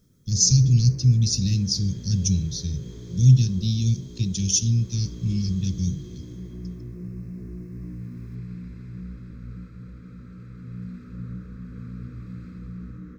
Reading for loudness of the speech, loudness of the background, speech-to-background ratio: -22.0 LUFS, -39.0 LUFS, 17.0 dB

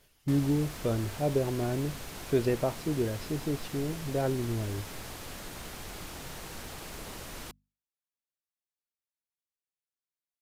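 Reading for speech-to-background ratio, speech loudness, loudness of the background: 10.5 dB, -31.5 LUFS, -42.0 LUFS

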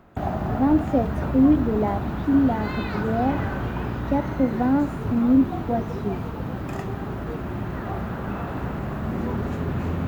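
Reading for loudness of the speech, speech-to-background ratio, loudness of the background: -23.5 LUFS, 5.5 dB, -29.0 LUFS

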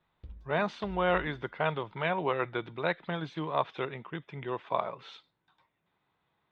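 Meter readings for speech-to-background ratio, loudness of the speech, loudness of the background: 19.0 dB, -33.0 LUFS, -52.0 LUFS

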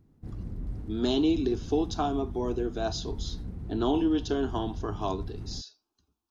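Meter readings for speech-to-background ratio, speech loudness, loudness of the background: 10.0 dB, -30.0 LUFS, -40.0 LUFS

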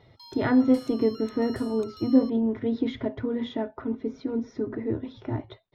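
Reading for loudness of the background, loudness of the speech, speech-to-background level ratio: -47.0 LUFS, -27.0 LUFS, 20.0 dB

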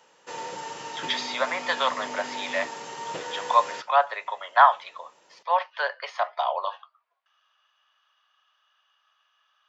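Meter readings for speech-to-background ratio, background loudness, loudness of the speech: 10.0 dB, -35.5 LUFS, -25.5 LUFS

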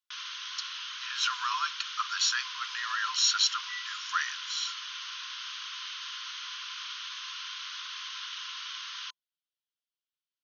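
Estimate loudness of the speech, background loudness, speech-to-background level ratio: -30.0 LUFS, -37.5 LUFS, 7.5 dB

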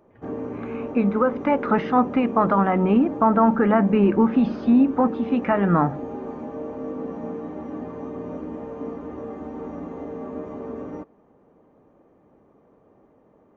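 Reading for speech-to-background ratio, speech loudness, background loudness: 13.0 dB, -20.0 LUFS, -33.0 LUFS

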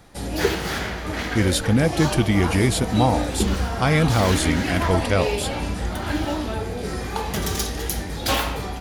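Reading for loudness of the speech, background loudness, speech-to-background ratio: -21.5 LUFS, -25.5 LUFS, 4.0 dB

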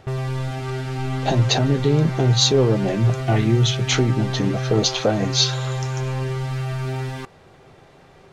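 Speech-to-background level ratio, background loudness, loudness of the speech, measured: 6.5 dB, -26.5 LUFS, -20.0 LUFS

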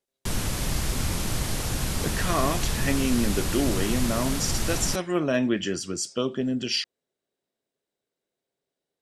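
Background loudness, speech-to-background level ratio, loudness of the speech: -28.5 LUFS, 1.0 dB, -27.5 LUFS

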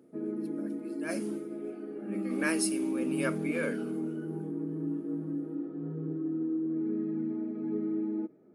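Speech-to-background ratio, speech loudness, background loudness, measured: -0.5 dB, -35.0 LUFS, -34.5 LUFS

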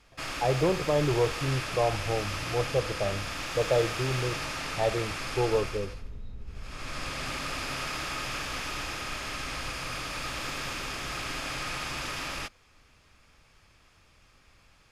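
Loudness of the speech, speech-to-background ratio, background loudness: -30.0 LUFS, 4.0 dB, -34.0 LUFS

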